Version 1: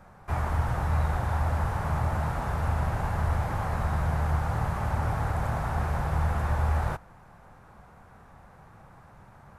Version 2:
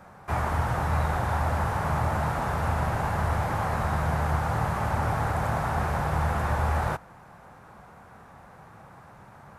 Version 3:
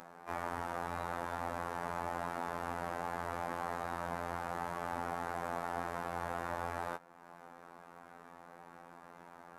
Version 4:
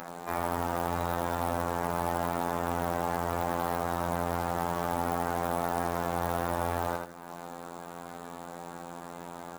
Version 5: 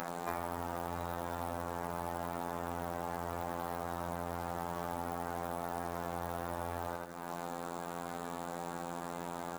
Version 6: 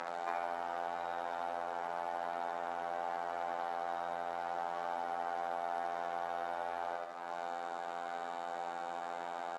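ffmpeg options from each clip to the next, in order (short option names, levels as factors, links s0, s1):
-af "highpass=f=130:p=1,volume=1.68"
-af "lowshelf=f=170:t=q:w=1.5:g=-13.5,acompressor=mode=upward:threshold=0.0158:ratio=2.5,afftfilt=real='hypot(re,im)*cos(PI*b)':imag='0':win_size=2048:overlap=0.75,volume=0.447"
-filter_complex "[0:a]asplit=2[s0][s1];[s1]alimiter=level_in=2.11:limit=0.0631:level=0:latency=1:release=117,volume=0.473,volume=1.26[s2];[s0][s2]amix=inputs=2:normalize=0,acrusher=bits=3:mode=log:mix=0:aa=0.000001,aecho=1:1:81|162|243|324:0.596|0.161|0.0434|0.0117,volume=1.5"
-af "acompressor=threshold=0.02:ratio=12,volume=1.26"
-af "highpass=420,lowpass=4200,aecho=1:1:71|142|213|284|355|426|497:0.473|0.27|0.154|0.0876|0.0499|0.0285|0.0162"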